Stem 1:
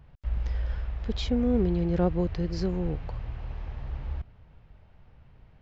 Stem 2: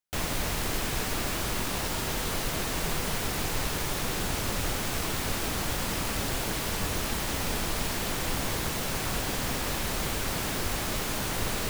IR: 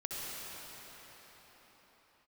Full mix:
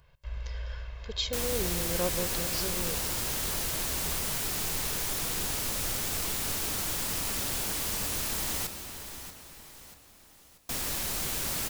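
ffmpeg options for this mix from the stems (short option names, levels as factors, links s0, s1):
-filter_complex "[0:a]lowshelf=f=460:g=-10.5,aecho=1:1:1.9:0.65,volume=0.708,asplit=2[s0][s1];[s1]volume=0.2[s2];[1:a]adelay=1200,volume=0.355,asplit=3[s3][s4][s5];[s3]atrim=end=8.67,asetpts=PTS-STARTPTS,afade=t=out:st=8.666:d=0.004:c=hsin[s6];[s4]atrim=start=8.67:end=10.69,asetpts=PTS-STARTPTS,volume=0[s7];[s5]atrim=start=10.69,asetpts=PTS-STARTPTS,afade=t=in:d=0.004:c=hsin[s8];[s6][s7][s8]concat=n=3:v=0:a=1,asplit=3[s9][s10][s11];[s10]volume=0.316[s12];[s11]volume=0.316[s13];[2:a]atrim=start_sample=2205[s14];[s2][s12]amix=inputs=2:normalize=0[s15];[s15][s14]afir=irnorm=-1:irlink=0[s16];[s13]aecho=0:1:636|1272|1908|2544|3180|3816:1|0.45|0.202|0.0911|0.041|0.0185[s17];[s0][s9][s16][s17]amix=inputs=4:normalize=0,highshelf=f=4000:g=11.5"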